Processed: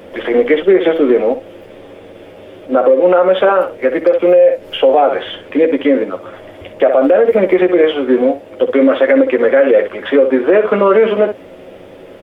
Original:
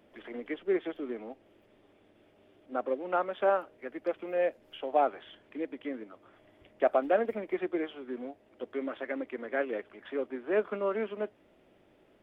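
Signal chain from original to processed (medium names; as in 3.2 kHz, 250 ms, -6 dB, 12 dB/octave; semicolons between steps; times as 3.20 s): peaking EQ 510 Hz +11 dB 0.29 oct; compression 4:1, threshold -24 dBFS, peak gain reduction 8 dB; on a send: early reflections 11 ms -5 dB, 64 ms -12 dB; on the sum: loudness maximiser +24.5 dB; trim -1 dB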